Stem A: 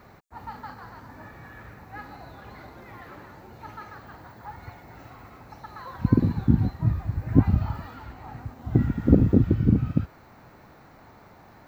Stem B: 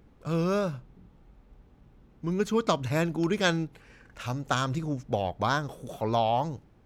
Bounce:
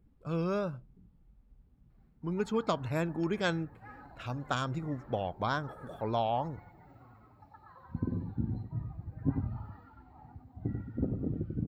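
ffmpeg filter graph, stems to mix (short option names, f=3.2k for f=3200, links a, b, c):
-filter_complex "[0:a]dynaudnorm=f=130:g=11:m=7dB,flanger=delay=5.6:depth=7.5:regen=57:speed=0.42:shape=triangular,adelay=1900,volume=-13dB,asplit=2[a][b];[b]volume=-6dB[c];[1:a]volume=-5dB[d];[c]aecho=0:1:93:1[e];[a][d][e]amix=inputs=3:normalize=0,afftdn=nr=12:nf=-54,bandreject=f=6.1k:w=5.4,adynamicequalizer=threshold=0.00316:dfrequency=3700:dqfactor=0.79:tfrequency=3700:tqfactor=0.79:attack=5:release=100:ratio=0.375:range=2.5:mode=cutabove:tftype=bell"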